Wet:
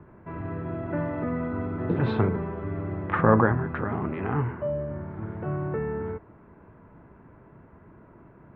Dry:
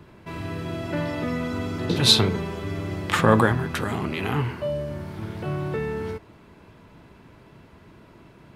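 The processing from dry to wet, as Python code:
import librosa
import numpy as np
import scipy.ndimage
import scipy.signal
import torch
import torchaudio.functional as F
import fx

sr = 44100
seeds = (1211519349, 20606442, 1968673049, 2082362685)

y = scipy.signal.sosfilt(scipy.signal.butter(4, 1700.0, 'lowpass', fs=sr, output='sos'), x)
y = y * librosa.db_to_amplitude(-1.5)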